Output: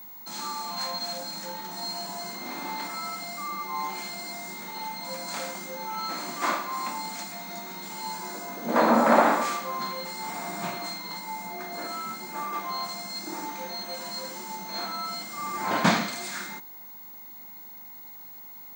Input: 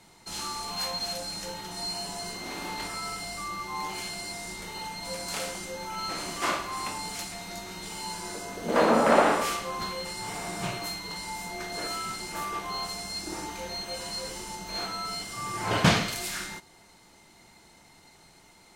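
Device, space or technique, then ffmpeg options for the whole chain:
old television with a line whistle: -filter_complex "[0:a]highpass=f=190:w=0.5412,highpass=f=190:w=1.3066,equalizer=f=230:t=q:w=4:g=4,equalizer=f=430:t=q:w=4:g=-8,equalizer=f=940:t=q:w=4:g=3,equalizer=f=2900:t=q:w=4:g=-10,equalizer=f=5400:t=q:w=4:g=-6,lowpass=f=7900:w=0.5412,lowpass=f=7900:w=1.3066,aeval=exprs='val(0)+0.00708*sin(2*PI*15625*n/s)':c=same,asettb=1/sr,asplit=3[s0][s1][s2];[s0]atrim=end=11.194[s3];[s1]atrim=start=11.19:end=12.53,asetpts=PTS-STARTPTS,afade=t=in:d=0.004:c=qsin,afade=t=out:st=1.336:d=0.004:c=qsin,equalizer=f=4800:t=o:w=2.8:g=-4[s4];[s2]atrim=start=12.526[s5];[s3][s4]acrossfade=d=0.004:c1=hsin:c2=qsin[s6];[s6][s5]acrossfade=d=0.004:c1=qsin:c2=hsin,volume=1.19"

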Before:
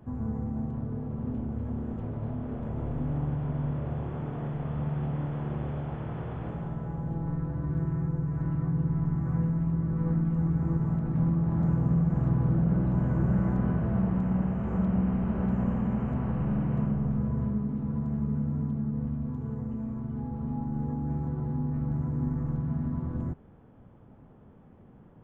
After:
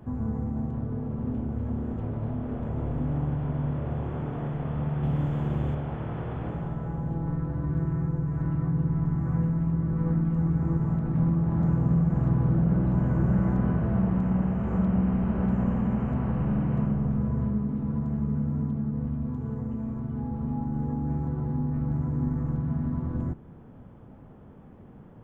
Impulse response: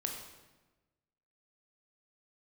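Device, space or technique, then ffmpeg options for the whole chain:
ducked reverb: -filter_complex "[0:a]asplit=3[s0][s1][s2];[1:a]atrim=start_sample=2205[s3];[s1][s3]afir=irnorm=-1:irlink=0[s4];[s2]apad=whole_len=1112981[s5];[s4][s5]sidechaincompress=threshold=0.0126:ratio=8:attack=16:release=438,volume=0.473[s6];[s0][s6]amix=inputs=2:normalize=0,asettb=1/sr,asplit=3[s7][s8][s9];[s7]atrim=end=5.034[s10];[s8]atrim=start=5.03:end=5.75,asetpts=PTS-STARTPTS,afade=t=in:d=0.004:c=qsin,afade=t=out:st=0.716:d=0.004:c=qsin,bass=f=250:g=4,treble=f=4000:g=13[s11];[s9]atrim=start=5.746[s12];[s10][s11]acrossfade=d=0.004:c1=hsin:c2=qsin[s13];[s13][s12]acrossfade=d=0.004:c1=qsin:c2=hsin,volume=1.19"

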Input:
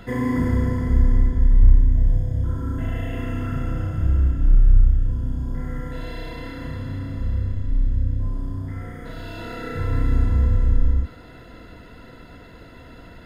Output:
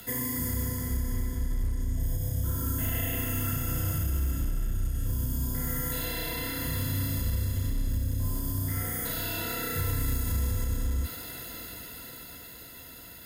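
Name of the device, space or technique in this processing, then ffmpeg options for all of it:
FM broadcast chain: -filter_complex "[0:a]highpass=43,dynaudnorm=f=260:g=13:m=3.76,acrossover=split=140|2900[s0][s1][s2];[s0]acompressor=threshold=0.178:ratio=4[s3];[s1]acompressor=threshold=0.0501:ratio=4[s4];[s2]acompressor=threshold=0.00447:ratio=4[s5];[s3][s4][s5]amix=inputs=3:normalize=0,aemphasis=mode=production:type=75fm,alimiter=limit=0.224:level=0:latency=1:release=60,asoftclip=type=hard:threshold=0.188,lowpass=f=15000:w=0.5412,lowpass=f=15000:w=1.3066,aemphasis=mode=production:type=75fm,volume=0.422"

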